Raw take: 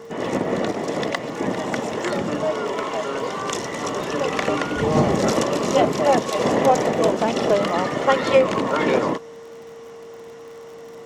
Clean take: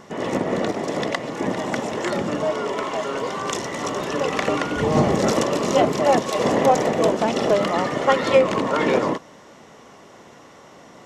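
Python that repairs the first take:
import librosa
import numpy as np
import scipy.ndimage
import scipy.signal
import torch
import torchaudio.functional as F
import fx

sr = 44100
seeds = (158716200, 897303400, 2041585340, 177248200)

y = fx.fix_declick_ar(x, sr, threshold=6.5)
y = fx.notch(y, sr, hz=460.0, q=30.0)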